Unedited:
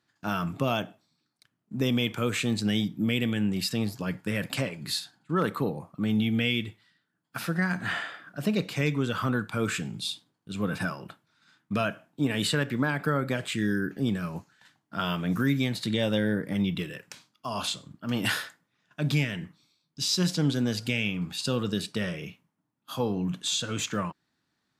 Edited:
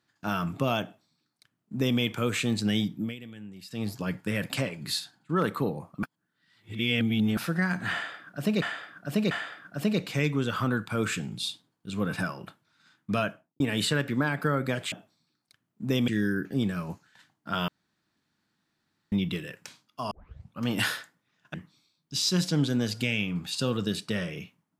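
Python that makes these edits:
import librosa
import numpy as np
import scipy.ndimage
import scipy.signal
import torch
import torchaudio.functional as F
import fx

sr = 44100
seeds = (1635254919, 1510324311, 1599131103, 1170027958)

y = fx.studio_fade_out(x, sr, start_s=11.84, length_s=0.38)
y = fx.edit(y, sr, fx.duplicate(start_s=0.83, length_s=1.16, to_s=13.54),
    fx.fade_down_up(start_s=2.93, length_s=0.98, db=-16.5, fade_s=0.23),
    fx.reverse_span(start_s=6.03, length_s=1.34),
    fx.repeat(start_s=7.93, length_s=0.69, count=3),
    fx.room_tone_fill(start_s=15.14, length_s=1.44),
    fx.tape_start(start_s=17.57, length_s=0.52),
    fx.cut(start_s=19.0, length_s=0.4), tone=tone)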